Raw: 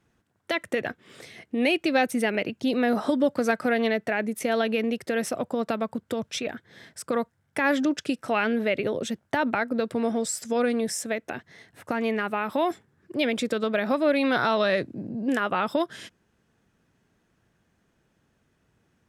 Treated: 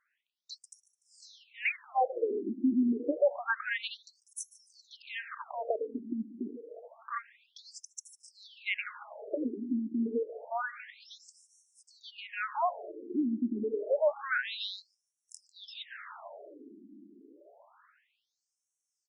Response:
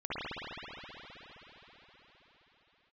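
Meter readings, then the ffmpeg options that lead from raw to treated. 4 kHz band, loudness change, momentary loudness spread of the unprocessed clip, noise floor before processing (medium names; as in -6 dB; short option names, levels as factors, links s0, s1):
-9.0 dB, -7.5 dB, 10 LU, -71 dBFS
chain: -filter_complex "[0:a]aecho=1:1:147|294|441|588|735:0.106|0.0593|0.0332|0.0186|0.0104,asplit=2[s0][s1];[1:a]atrim=start_sample=2205,asetrate=32634,aresample=44100[s2];[s1][s2]afir=irnorm=-1:irlink=0,volume=0.0668[s3];[s0][s3]amix=inputs=2:normalize=0,afftfilt=real='re*between(b*sr/1024,260*pow(7800/260,0.5+0.5*sin(2*PI*0.28*pts/sr))/1.41,260*pow(7800/260,0.5+0.5*sin(2*PI*0.28*pts/sr))*1.41)':imag='im*between(b*sr/1024,260*pow(7800/260,0.5+0.5*sin(2*PI*0.28*pts/sr))/1.41,260*pow(7800/260,0.5+0.5*sin(2*PI*0.28*pts/sr))*1.41)':win_size=1024:overlap=0.75,volume=0.841"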